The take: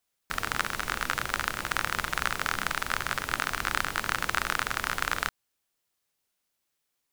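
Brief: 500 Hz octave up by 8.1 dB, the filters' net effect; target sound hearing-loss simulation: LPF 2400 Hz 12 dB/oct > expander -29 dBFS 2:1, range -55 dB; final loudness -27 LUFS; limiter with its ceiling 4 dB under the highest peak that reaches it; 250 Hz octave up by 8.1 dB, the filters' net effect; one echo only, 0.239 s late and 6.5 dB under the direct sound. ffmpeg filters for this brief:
-af "equalizer=f=250:t=o:g=8,equalizer=f=500:t=o:g=8,alimiter=limit=-9.5dB:level=0:latency=1,lowpass=2.4k,aecho=1:1:239:0.473,agate=range=-55dB:threshold=-29dB:ratio=2,volume=3.5dB"

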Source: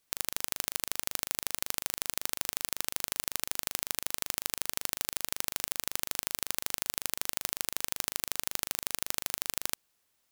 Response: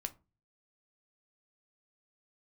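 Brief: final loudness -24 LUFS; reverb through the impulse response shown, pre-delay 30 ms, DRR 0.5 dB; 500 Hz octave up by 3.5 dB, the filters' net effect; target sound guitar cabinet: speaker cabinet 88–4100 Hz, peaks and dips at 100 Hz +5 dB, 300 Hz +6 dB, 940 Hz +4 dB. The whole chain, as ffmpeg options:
-filter_complex "[0:a]equalizer=f=500:t=o:g=3.5,asplit=2[a][b];[1:a]atrim=start_sample=2205,adelay=30[c];[b][c]afir=irnorm=-1:irlink=0,volume=1dB[d];[a][d]amix=inputs=2:normalize=0,highpass=88,equalizer=f=100:t=q:w=4:g=5,equalizer=f=300:t=q:w=4:g=6,equalizer=f=940:t=q:w=4:g=4,lowpass=f=4.1k:w=0.5412,lowpass=f=4.1k:w=1.3066,volume=13.5dB"

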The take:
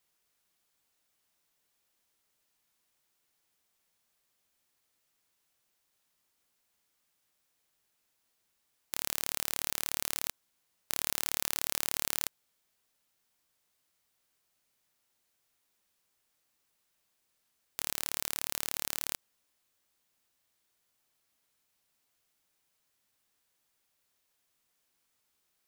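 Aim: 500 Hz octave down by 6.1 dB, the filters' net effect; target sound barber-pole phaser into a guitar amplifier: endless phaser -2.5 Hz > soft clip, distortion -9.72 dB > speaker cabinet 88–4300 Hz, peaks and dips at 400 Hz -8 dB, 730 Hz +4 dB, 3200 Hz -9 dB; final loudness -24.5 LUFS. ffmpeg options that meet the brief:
-filter_complex "[0:a]equalizer=f=500:t=o:g=-7.5,asplit=2[a][b];[b]afreqshift=-2.5[c];[a][c]amix=inputs=2:normalize=1,asoftclip=threshold=-17.5dB,highpass=88,equalizer=f=400:t=q:w=4:g=-8,equalizer=f=730:t=q:w=4:g=4,equalizer=f=3.2k:t=q:w=4:g=-9,lowpass=f=4.3k:w=0.5412,lowpass=f=4.3k:w=1.3066,volume=25.5dB"

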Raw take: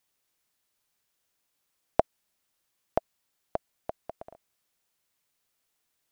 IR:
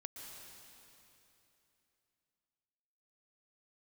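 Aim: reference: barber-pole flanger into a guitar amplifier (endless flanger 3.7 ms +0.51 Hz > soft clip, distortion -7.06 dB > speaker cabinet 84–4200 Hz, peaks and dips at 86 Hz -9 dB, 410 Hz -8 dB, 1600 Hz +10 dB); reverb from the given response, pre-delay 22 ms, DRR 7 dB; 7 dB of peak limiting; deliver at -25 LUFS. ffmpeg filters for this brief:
-filter_complex "[0:a]alimiter=limit=-11.5dB:level=0:latency=1,asplit=2[a][b];[1:a]atrim=start_sample=2205,adelay=22[c];[b][c]afir=irnorm=-1:irlink=0,volume=-3.5dB[d];[a][d]amix=inputs=2:normalize=0,asplit=2[e][f];[f]adelay=3.7,afreqshift=0.51[g];[e][g]amix=inputs=2:normalize=1,asoftclip=threshold=-29.5dB,highpass=84,equalizer=f=86:t=q:w=4:g=-9,equalizer=f=410:t=q:w=4:g=-8,equalizer=f=1.6k:t=q:w=4:g=10,lowpass=f=4.2k:w=0.5412,lowpass=f=4.2k:w=1.3066,volume=23.5dB"

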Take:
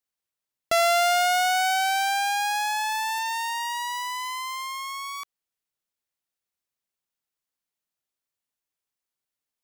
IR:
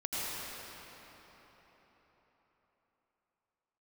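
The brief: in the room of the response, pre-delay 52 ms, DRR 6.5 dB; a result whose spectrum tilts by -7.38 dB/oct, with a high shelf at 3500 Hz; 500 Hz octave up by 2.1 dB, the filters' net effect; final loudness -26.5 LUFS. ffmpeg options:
-filter_complex "[0:a]equalizer=f=500:t=o:g=4.5,highshelf=f=3.5k:g=-8.5,asplit=2[a][b];[1:a]atrim=start_sample=2205,adelay=52[c];[b][c]afir=irnorm=-1:irlink=0,volume=-13dB[d];[a][d]amix=inputs=2:normalize=0,volume=-2.5dB"

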